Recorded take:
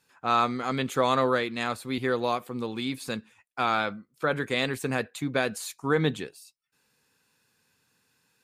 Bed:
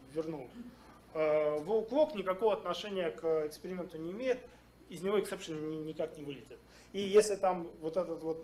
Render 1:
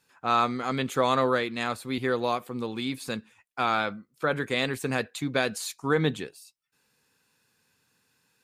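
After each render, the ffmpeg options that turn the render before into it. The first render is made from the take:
-filter_complex "[0:a]asettb=1/sr,asplit=3[s0][s1][s2];[s0]atrim=end=4.874[s3];[s1]atrim=start=4.87:end=5.94,asetpts=PTS-STARTPTS,afade=t=in:d=0.004:c=qsin,afade=t=out:st=1.066:d=0.004:c=qsin,equalizer=f=4600:w=0.95:g=4[s4];[s2]atrim=start=5.936[s5];[s3][s4]acrossfade=d=0.004:c1=hsin:c2=qsin[s6];[s6][s5]acrossfade=d=0.004:c1=qsin:c2=hsin"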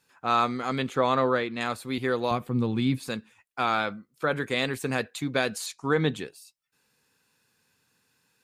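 -filter_complex "[0:a]asettb=1/sr,asplit=3[s0][s1][s2];[s0]atrim=end=0.894[s3];[s1]atrim=start=0.89:end=1.61,asetpts=PTS-STARTPTS,afade=t=in:d=0.004:c=qsin,afade=t=out:st=0.716:d=0.004:c=qsin,aemphasis=mode=reproduction:type=50fm[s4];[s2]atrim=start=1.606[s5];[s3][s4]acrossfade=d=0.004:c1=hsin:c2=qsin[s6];[s6][s5]acrossfade=d=0.004:c1=qsin:c2=hsin,asettb=1/sr,asplit=3[s7][s8][s9];[s7]atrim=end=2.314[s10];[s8]atrim=start=2.31:end=3.03,asetpts=PTS-STARTPTS,afade=t=in:d=0.004:c=qsin,afade=t=out:st=0.716:d=0.004:c=qsin,bass=f=250:g=14,treble=f=4000:g=-5[s11];[s9]atrim=start=3.026[s12];[s10][s11]acrossfade=d=0.004:c1=hsin:c2=qsin[s13];[s13][s12]acrossfade=d=0.004:c1=qsin:c2=hsin,asettb=1/sr,asplit=3[s14][s15][s16];[s14]atrim=end=5.664[s17];[s15]atrim=start=5.66:end=6.16,asetpts=PTS-STARTPTS,afade=t=in:d=0.004:c=qsin,afade=t=out:st=0.496:d=0.004:c=qsin,lowpass=8100[s18];[s16]atrim=start=6.156[s19];[s17][s18]acrossfade=d=0.004:c1=hsin:c2=qsin[s20];[s20][s19]acrossfade=d=0.004:c1=qsin:c2=hsin"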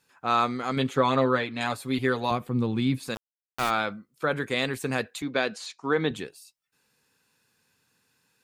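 -filter_complex "[0:a]asettb=1/sr,asplit=3[s0][s1][s2];[s0]atrim=end=0.764[s3];[s1]atrim=start=0.76:end=2.3,asetpts=PTS-STARTPTS,afade=t=in:d=0.004:c=qsin,afade=t=out:st=1.536:d=0.004:c=qsin,aecho=1:1:7.2:0.67,atrim=end_sample=67914[s4];[s2]atrim=start=2.296[s5];[s3][s4]acrossfade=d=0.004:c1=hsin:c2=qsin[s6];[s6][s5]acrossfade=d=0.004:c1=qsin:c2=hsin,asplit=3[s7][s8][s9];[s7]afade=t=out:st=3.14:d=0.02[s10];[s8]aeval=exprs='val(0)*gte(abs(val(0)),0.0473)':c=same,afade=t=in:st=3.14:d=0.02,afade=t=out:st=3.69:d=0.02[s11];[s9]afade=t=in:st=3.69:d=0.02[s12];[s10][s11][s12]amix=inputs=3:normalize=0,asettb=1/sr,asplit=3[s13][s14][s15];[s13]atrim=end=5.224[s16];[s14]atrim=start=5.22:end=6.11,asetpts=PTS-STARTPTS,afade=t=in:d=0.004:c=qsin,afade=t=out:st=0.886:d=0.004:c=qsin,highpass=200,lowpass=5300[s17];[s15]atrim=start=6.106[s18];[s16][s17]acrossfade=d=0.004:c1=hsin:c2=qsin[s19];[s19][s18]acrossfade=d=0.004:c1=qsin:c2=hsin"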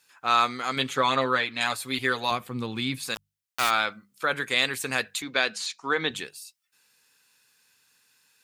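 -af "tiltshelf=f=890:g=-7.5,bandreject=f=50:t=h:w=6,bandreject=f=100:t=h:w=6,bandreject=f=150:t=h:w=6,bandreject=f=200:t=h:w=6"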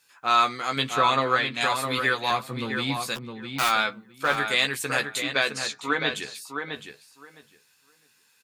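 -filter_complex "[0:a]asplit=2[s0][s1];[s1]adelay=14,volume=0.473[s2];[s0][s2]amix=inputs=2:normalize=0,asplit=2[s3][s4];[s4]adelay=660,lowpass=f=3100:p=1,volume=0.501,asplit=2[s5][s6];[s6]adelay=660,lowpass=f=3100:p=1,volume=0.16,asplit=2[s7][s8];[s8]adelay=660,lowpass=f=3100:p=1,volume=0.16[s9];[s3][s5][s7][s9]amix=inputs=4:normalize=0"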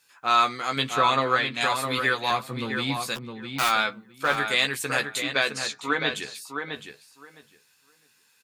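-af anull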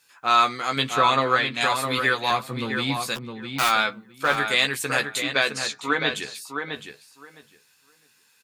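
-af "volume=1.26"

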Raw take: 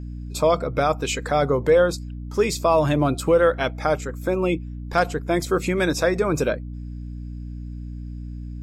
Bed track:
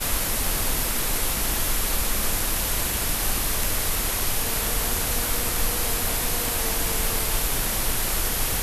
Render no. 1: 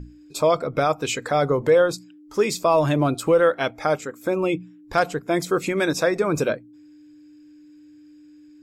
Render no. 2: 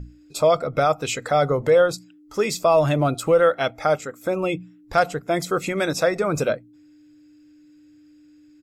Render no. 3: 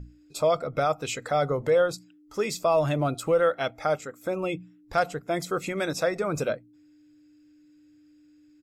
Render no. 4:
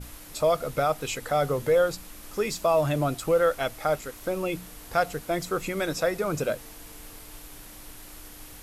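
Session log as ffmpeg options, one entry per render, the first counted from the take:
-af "bandreject=f=60:t=h:w=6,bandreject=f=120:t=h:w=6,bandreject=f=180:t=h:w=6,bandreject=f=240:t=h:w=6"
-af "aecho=1:1:1.5:0.34"
-af "volume=0.531"
-filter_complex "[1:a]volume=0.0944[s0];[0:a][s0]amix=inputs=2:normalize=0"

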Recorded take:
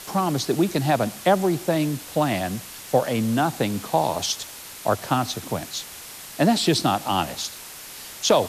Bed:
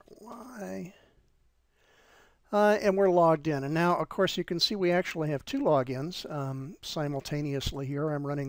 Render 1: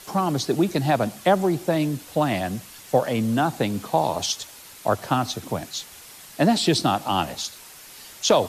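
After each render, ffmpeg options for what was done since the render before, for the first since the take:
-af "afftdn=nr=6:nf=-40"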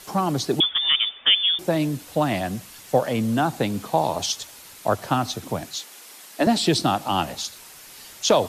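-filter_complex "[0:a]asettb=1/sr,asplit=3[s0][s1][s2];[s0]atrim=end=0.604[s3];[s1]atrim=start=0.6:end=1.59,asetpts=PTS-STARTPTS,afade=t=in:d=0.004:c=qsin,afade=t=out:st=0.986:d=0.004:c=qsin,lowpass=f=3100:t=q:w=0.5098,lowpass=f=3100:t=q:w=0.6013,lowpass=f=3100:t=q:w=0.9,lowpass=f=3100:t=q:w=2.563,afreqshift=-3700[s4];[s2]atrim=start=1.586[s5];[s3][s4]acrossfade=d=0.004:c1=hsin:c2=qsin[s6];[s6][s5]acrossfade=d=0.004:c1=qsin:c2=hsin,asettb=1/sr,asplit=3[s7][s8][s9];[s7]atrim=end=5.754[s10];[s8]atrim=start=5.75:end=6.47,asetpts=PTS-STARTPTS,afade=t=in:d=0.004:c=qsin,afade=t=out:st=0.716:d=0.004:c=qsin,highpass=f=230:w=0.5412,highpass=f=230:w=1.3066[s11];[s9]atrim=start=6.466[s12];[s10][s11]acrossfade=d=0.004:c1=hsin:c2=qsin[s13];[s13][s12]acrossfade=d=0.004:c1=qsin:c2=hsin"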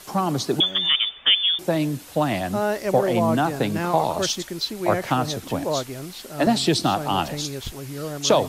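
-filter_complex "[1:a]volume=0.944[s0];[0:a][s0]amix=inputs=2:normalize=0"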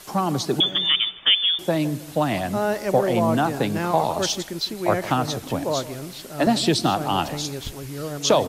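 -filter_complex "[0:a]asplit=2[s0][s1];[s1]adelay=159,lowpass=f=1200:p=1,volume=0.178,asplit=2[s2][s3];[s3]adelay=159,lowpass=f=1200:p=1,volume=0.39,asplit=2[s4][s5];[s5]adelay=159,lowpass=f=1200:p=1,volume=0.39,asplit=2[s6][s7];[s7]adelay=159,lowpass=f=1200:p=1,volume=0.39[s8];[s0][s2][s4][s6][s8]amix=inputs=5:normalize=0"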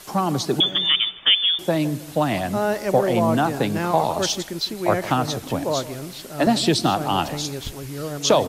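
-af "volume=1.12"

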